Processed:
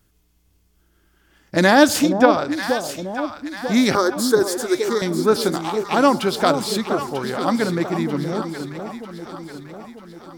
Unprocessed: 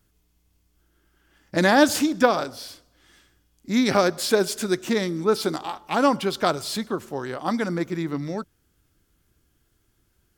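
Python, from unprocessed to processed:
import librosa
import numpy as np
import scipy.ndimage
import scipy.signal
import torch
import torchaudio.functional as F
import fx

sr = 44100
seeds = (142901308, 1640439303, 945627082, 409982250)

y = fx.high_shelf(x, sr, hz=5800.0, db=-11.5, at=(2.09, 2.63))
y = fx.fixed_phaser(y, sr, hz=670.0, stages=6, at=(3.95, 5.02))
y = fx.echo_alternate(y, sr, ms=471, hz=850.0, feedback_pct=70, wet_db=-6.5)
y = y * librosa.db_to_amplitude(4.0)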